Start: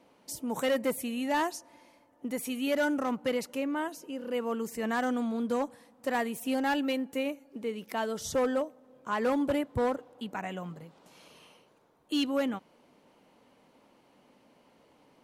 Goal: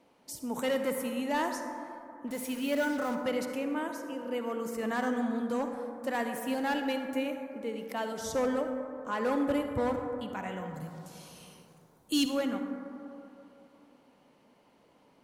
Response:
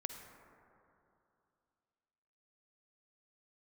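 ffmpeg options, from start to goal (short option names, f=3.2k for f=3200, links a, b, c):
-filter_complex "[0:a]asplit=3[a][b][c];[a]afade=t=out:st=2.27:d=0.02[d];[b]acrusher=bits=6:mix=0:aa=0.5,afade=t=in:st=2.27:d=0.02,afade=t=out:st=3.14:d=0.02[e];[c]afade=t=in:st=3.14:d=0.02[f];[d][e][f]amix=inputs=3:normalize=0,asettb=1/sr,asplit=3[g][h][i];[g]atrim=end=10.744[j];[h]atrim=start=10.74:end=12.26,asetpts=PTS-STARTPTS,afade=t=in:d=0.004:c=qsin,afade=t=out:st=1.516:d=0.004:c=qsin,bass=f=250:g=10,treble=f=4k:g=13[k];[i]atrim=start=12.256[l];[j][k]acrossfade=d=0.004:c1=hsin:c2=qsin[m];[m][l]acrossfade=d=0.004:c1=qsin:c2=hsin[n];[1:a]atrim=start_sample=2205[o];[n][o]afir=irnorm=-1:irlink=0"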